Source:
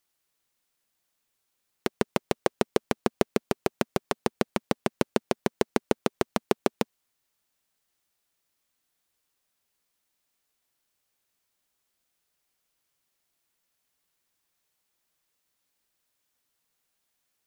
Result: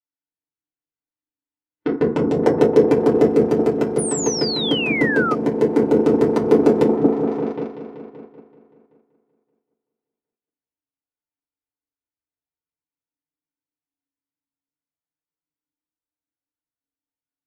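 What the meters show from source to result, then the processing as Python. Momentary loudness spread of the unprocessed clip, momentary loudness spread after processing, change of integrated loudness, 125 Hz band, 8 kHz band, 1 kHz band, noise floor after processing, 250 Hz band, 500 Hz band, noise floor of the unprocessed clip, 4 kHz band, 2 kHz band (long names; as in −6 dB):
4 LU, 11 LU, +12.5 dB, +11.0 dB, +13.5 dB, +7.0 dB, below −85 dBFS, +14.0 dB, +14.0 dB, −79 dBFS, +12.0 dB, +11.0 dB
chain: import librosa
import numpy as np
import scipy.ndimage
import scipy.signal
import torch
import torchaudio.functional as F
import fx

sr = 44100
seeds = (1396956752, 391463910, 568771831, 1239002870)

p1 = fx.high_shelf(x, sr, hz=3100.0, db=6.0)
p2 = p1 + fx.echo_opening(p1, sr, ms=191, hz=400, octaves=1, feedback_pct=70, wet_db=0, dry=0)
p3 = fx.env_lowpass(p2, sr, base_hz=2500.0, full_db=-22.0)
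p4 = fx.low_shelf(p3, sr, hz=70.0, db=3.0)
p5 = fx.comb_fb(p4, sr, f0_hz=280.0, decay_s=0.47, harmonics='all', damping=0.0, mix_pct=50)
p6 = fx.rev_fdn(p5, sr, rt60_s=0.51, lf_ratio=1.2, hf_ratio=0.45, size_ms=20.0, drr_db=-6.5)
p7 = fx.level_steps(p6, sr, step_db=11)
p8 = p6 + F.gain(torch.from_numpy(p7), 0.5).numpy()
p9 = fx.spec_paint(p8, sr, seeds[0], shape='fall', start_s=3.98, length_s=1.37, low_hz=1200.0, high_hz=10000.0, level_db=-21.0)
p10 = fx.rider(p9, sr, range_db=5, speed_s=2.0)
p11 = fx.spectral_expand(p10, sr, expansion=1.5)
y = F.gain(torch.from_numpy(p11), -1.5).numpy()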